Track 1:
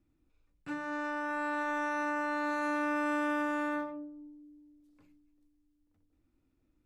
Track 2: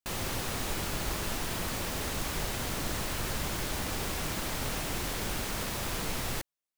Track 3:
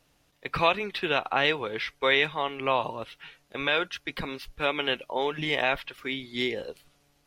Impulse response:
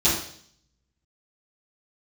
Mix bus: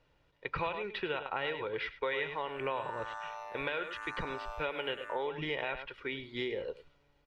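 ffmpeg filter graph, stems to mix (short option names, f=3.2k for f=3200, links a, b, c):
-filter_complex "[0:a]tremolo=f=110:d=0.824,highpass=f=590:w=0.5412,highpass=f=590:w=1.3066,asplit=2[a][b];[b]afreqshift=-0.85[c];[a][c]amix=inputs=2:normalize=1,adelay=1400,volume=-2.5dB[d];[2:a]lowpass=2.8k,aecho=1:1:2.1:0.44,volume=-3dB,asplit=2[e][f];[f]volume=-17dB[g];[d][e]amix=inputs=2:normalize=0,acompressor=threshold=-32dB:ratio=5,volume=0dB[h];[g]aecho=0:1:101:1[i];[h][i]amix=inputs=2:normalize=0"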